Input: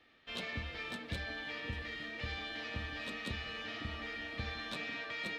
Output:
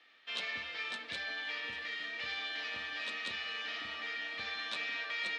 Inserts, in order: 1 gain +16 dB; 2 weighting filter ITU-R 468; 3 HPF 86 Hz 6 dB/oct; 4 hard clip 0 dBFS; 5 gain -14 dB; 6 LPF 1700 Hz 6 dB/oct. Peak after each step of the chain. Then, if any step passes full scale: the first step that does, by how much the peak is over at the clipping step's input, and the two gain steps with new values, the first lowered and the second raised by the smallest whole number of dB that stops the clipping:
-10.0, -2.5, -2.5, -2.5, -16.5, -24.0 dBFS; no overload

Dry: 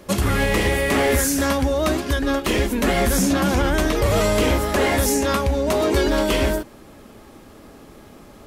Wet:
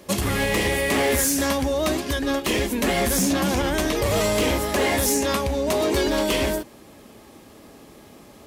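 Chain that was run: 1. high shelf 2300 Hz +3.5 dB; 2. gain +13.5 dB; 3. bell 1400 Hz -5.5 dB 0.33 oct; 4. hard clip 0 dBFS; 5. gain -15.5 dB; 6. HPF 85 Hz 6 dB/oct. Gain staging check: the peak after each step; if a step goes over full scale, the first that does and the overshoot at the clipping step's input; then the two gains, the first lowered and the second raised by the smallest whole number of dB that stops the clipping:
-8.5, +5.0, +5.5, 0.0, -15.5, -12.0 dBFS; step 2, 5.5 dB; step 2 +7.5 dB, step 5 -9.5 dB

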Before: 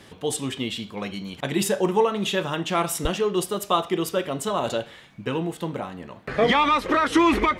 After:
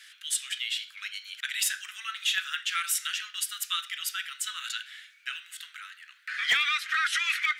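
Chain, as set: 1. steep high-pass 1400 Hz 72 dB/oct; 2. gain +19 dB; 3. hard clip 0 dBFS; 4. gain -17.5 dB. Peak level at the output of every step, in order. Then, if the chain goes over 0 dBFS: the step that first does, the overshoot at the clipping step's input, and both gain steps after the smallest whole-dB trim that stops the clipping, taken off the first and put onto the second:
-12.0, +7.0, 0.0, -17.5 dBFS; step 2, 7.0 dB; step 2 +12 dB, step 4 -10.5 dB

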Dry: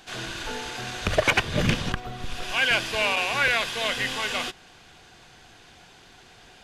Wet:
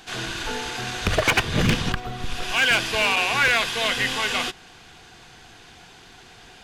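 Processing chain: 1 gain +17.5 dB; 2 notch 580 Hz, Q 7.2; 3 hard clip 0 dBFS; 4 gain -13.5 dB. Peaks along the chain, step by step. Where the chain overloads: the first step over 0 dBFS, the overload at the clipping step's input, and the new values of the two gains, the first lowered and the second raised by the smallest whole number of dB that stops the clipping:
+5.0, +7.5, 0.0, -13.5 dBFS; step 1, 7.5 dB; step 1 +9.5 dB, step 4 -5.5 dB

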